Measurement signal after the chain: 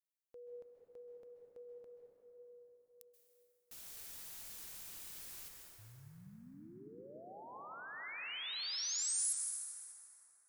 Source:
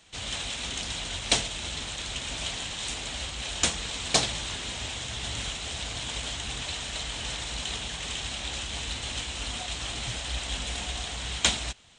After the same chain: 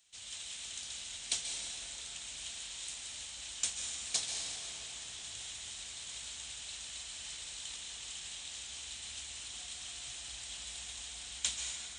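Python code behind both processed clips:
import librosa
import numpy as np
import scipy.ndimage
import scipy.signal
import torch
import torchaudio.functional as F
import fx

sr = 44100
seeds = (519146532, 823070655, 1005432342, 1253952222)

y = F.preemphasis(torch.from_numpy(x), 0.9).numpy()
y = fx.rev_plate(y, sr, seeds[0], rt60_s=4.2, hf_ratio=0.45, predelay_ms=120, drr_db=0.0)
y = y * librosa.db_to_amplitude(-6.5)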